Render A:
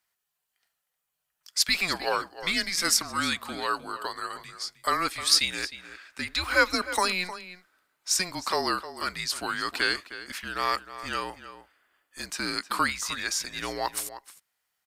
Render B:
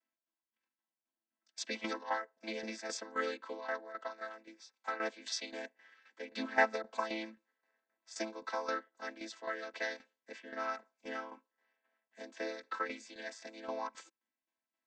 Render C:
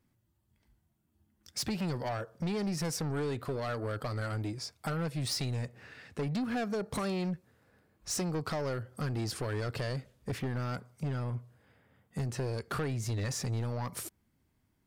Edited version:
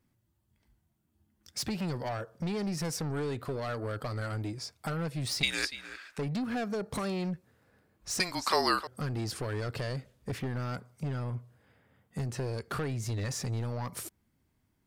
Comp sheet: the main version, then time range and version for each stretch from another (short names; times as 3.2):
C
5.43–6.18 from A
8.2–8.87 from A
not used: B